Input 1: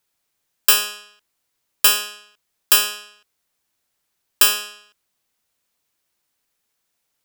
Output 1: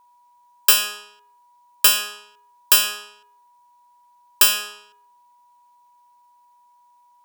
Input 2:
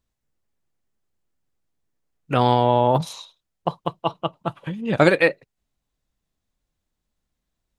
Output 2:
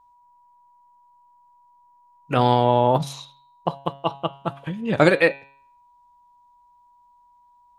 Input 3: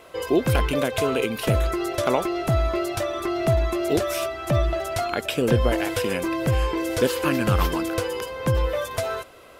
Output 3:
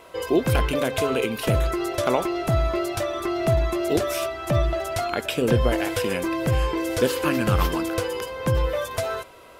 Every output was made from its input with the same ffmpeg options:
-af "bandreject=frequency=138.2:width_type=h:width=4,bandreject=frequency=276.4:width_type=h:width=4,bandreject=frequency=414.6:width_type=h:width=4,bandreject=frequency=552.8:width_type=h:width=4,bandreject=frequency=691:width_type=h:width=4,bandreject=frequency=829.2:width_type=h:width=4,bandreject=frequency=967.4:width_type=h:width=4,bandreject=frequency=1105.6:width_type=h:width=4,bandreject=frequency=1243.8:width_type=h:width=4,bandreject=frequency=1382:width_type=h:width=4,bandreject=frequency=1520.2:width_type=h:width=4,bandreject=frequency=1658.4:width_type=h:width=4,bandreject=frequency=1796.6:width_type=h:width=4,bandreject=frequency=1934.8:width_type=h:width=4,bandreject=frequency=2073:width_type=h:width=4,bandreject=frequency=2211.2:width_type=h:width=4,bandreject=frequency=2349.4:width_type=h:width=4,bandreject=frequency=2487.6:width_type=h:width=4,bandreject=frequency=2625.8:width_type=h:width=4,bandreject=frequency=2764:width_type=h:width=4,bandreject=frequency=2902.2:width_type=h:width=4,bandreject=frequency=3040.4:width_type=h:width=4,bandreject=frequency=3178.6:width_type=h:width=4,bandreject=frequency=3316.8:width_type=h:width=4,bandreject=frequency=3455:width_type=h:width=4,bandreject=frequency=3593.2:width_type=h:width=4,bandreject=frequency=3731.4:width_type=h:width=4,bandreject=frequency=3869.6:width_type=h:width=4,bandreject=frequency=4007.8:width_type=h:width=4,bandreject=frequency=4146:width_type=h:width=4,bandreject=frequency=4284.2:width_type=h:width=4,bandreject=frequency=4422.4:width_type=h:width=4,aeval=exprs='val(0)+0.002*sin(2*PI*970*n/s)':channel_layout=same"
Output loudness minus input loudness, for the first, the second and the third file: −0.5, −0.5, 0.0 LU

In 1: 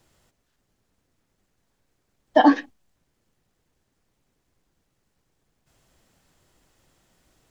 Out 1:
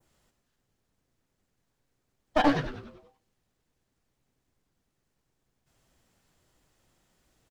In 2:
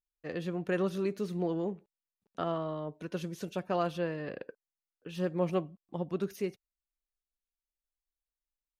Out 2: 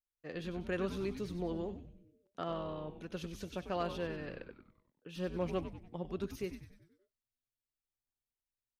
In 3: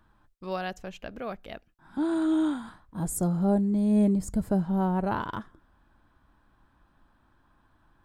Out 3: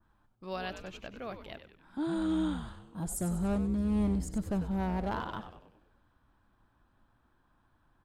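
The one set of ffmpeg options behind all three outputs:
-filter_complex "[0:a]aeval=exprs='clip(val(0),-1,0.0944)':channel_layout=same,asplit=7[link_01][link_02][link_03][link_04][link_05][link_06][link_07];[link_02]adelay=96,afreqshift=-130,volume=-9.5dB[link_08];[link_03]adelay=192,afreqshift=-260,volume=-15.3dB[link_09];[link_04]adelay=288,afreqshift=-390,volume=-21.2dB[link_10];[link_05]adelay=384,afreqshift=-520,volume=-27dB[link_11];[link_06]adelay=480,afreqshift=-650,volume=-32.9dB[link_12];[link_07]adelay=576,afreqshift=-780,volume=-38.7dB[link_13];[link_01][link_08][link_09][link_10][link_11][link_12][link_13]amix=inputs=7:normalize=0,adynamicequalizer=threshold=0.00251:dfrequency=3700:dqfactor=0.8:tfrequency=3700:tqfactor=0.8:attack=5:release=100:ratio=0.375:range=2.5:mode=boostabove:tftype=bell,volume=-6dB"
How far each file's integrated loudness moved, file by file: −8.0, −5.5, −6.0 LU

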